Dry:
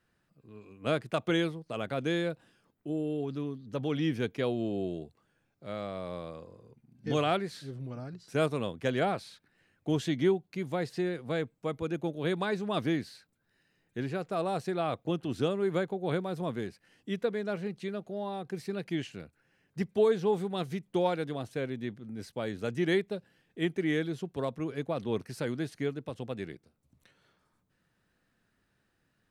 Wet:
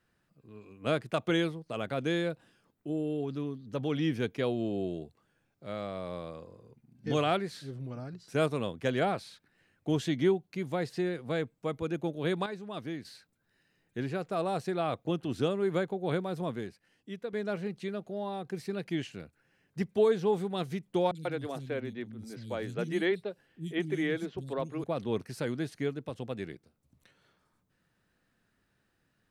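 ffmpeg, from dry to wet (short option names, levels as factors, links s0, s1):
-filter_complex "[0:a]asettb=1/sr,asplit=3[s0][s1][s2];[s0]atrim=end=21.114[s3];[s1]atrim=start=21.11:end=24.84,asetpts=PTS-STARTPTS,afade=t=in:d=0.004:c=qsin,afade=t=out:st=3.726:d=0.004:c=qsin,acrossover=split=220|4400[s4][s5][s6];[s6]adelay=40[s7];[s5]adelay=140[s8];[s4][s8][s7]amix=inputs=3:normalize=0,atrim=end_sample=164493[s9];[s2]atrim=start=24.836[s10];[s3][s9]acrossfade=d=0.004:c1=hsin:c2=qsin[s11];[s11][s10]acrossfade=d=0.004:c1=qsin:c2=hsin,asplit=4[s12][s13][s14][s15];[s12]atrim=end=12.462[s16];[s13]atrim=start=12.458:end=13.052,asetpts=PTS-STARTPTS,volume=0.376[s17];[s14]atrim=start=13.048:end=17.33,asetpts=PTS-STARTPTS,afade=t=out:st=3.382:d=0.9:c=qua:silence=0.398107[s18];[s15]atrim=start=17.33,asetpts=PTS-STARTPTS,afade=t=in:d=0.004:c=hsin:silence=0.398107[s19];[s16][s17]acrossfade=d=0.004:c1=hsin:c2=hsin[s20];[s18][s19]concat=n=2:v=0:a=1[s21];[s20][s21]acrossfade=d=0.004:c1=hsin:c2=hsin"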